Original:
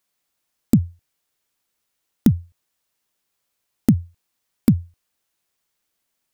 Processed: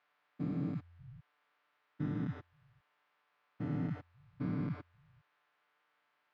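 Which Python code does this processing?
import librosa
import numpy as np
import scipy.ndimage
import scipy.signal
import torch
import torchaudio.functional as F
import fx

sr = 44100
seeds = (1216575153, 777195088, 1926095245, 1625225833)

y = fx.spec_steps(x, sr, hold_ms=400)
y = fx.bandpass_q(y, sr, hz=1300.0, q=1.1)
y = fx.air_absorb(y, sr, metres=260.0)
y = y + 0.99 * np.pad(y, (int(6.8 * sr / 1000.0), 0))[:len(y)]
y = y * librosa.db_to_amplitude(10.5)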